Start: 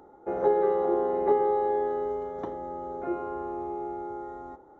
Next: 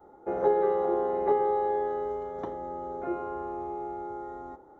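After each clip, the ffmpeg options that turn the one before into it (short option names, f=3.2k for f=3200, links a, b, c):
-af "adynamicequalizer=threshold=0.01:dfrequency=290:dqfactor=1.5:tfrequency=290:tqfactor=1.5:attack=5:release=100:ratio=0.375:range=2.5:mode=cutabove:tftype=bell"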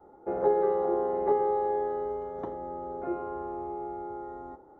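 -af "highshelf=f=2.3k:g=-10"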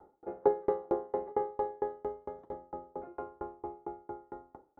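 -af "aeval=exprs='val(0)*pow(10,-33*if(lt(mod(4.4*n/s,1),2*abs(4.4)/1000),1-mod(4.4*n/s,1)/(2*abs(4.4)/1000),(mod(4.4*n/s,1)-2*abs(4.4)/1000)/(1-2*abs(4.4)/1000))/20)':c=same,volume=2dB"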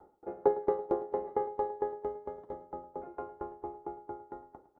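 -af "aecho=1:1:108|216|324|432|540|648:0.141|0.0833|0.0492|0.029|0.0171|0.0101"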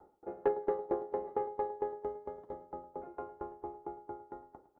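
-af "asoftclip=type=tanh:threshold=-17.5dB,volume=-2dB"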